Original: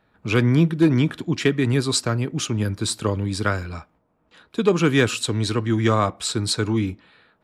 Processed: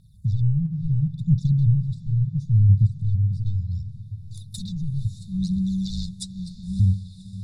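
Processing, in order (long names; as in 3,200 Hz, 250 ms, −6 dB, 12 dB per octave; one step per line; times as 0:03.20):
0:05.23–0:06.80: frequency shifter +79 Hz
thirty-one-band graphic EQ 200 Hz −11 dB, 500 Hz +11 dB, 4,000 Hz −10 dB, 10,000 Hz +10 dB
gain into a clipping stage and back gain 17 dB
in parallel at −2 dB: downward compressor, threshold −35 dBFS, peak gain reduction 15 dB
on the sum: soft clipping −15.5 dBFS, distortion −21 dB
linear-phase brick-wall band-stop 210–3,500 Hz
parametric band 300 Hz +2 dB 1.4 octaves
treble cut that deepens with the level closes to 420 Hz, closed at −22.5 dBFS
phase shifter 0.72 Hz, delay 2.9 ms, feedback 60%
feedback delay with all-pass diffusion 568 ms, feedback 58%, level −15 dB
on a send at −16 dB: convolution reverb RT60 0.50 s, pre-delay 3 ms
on the sum: level +4.5 dB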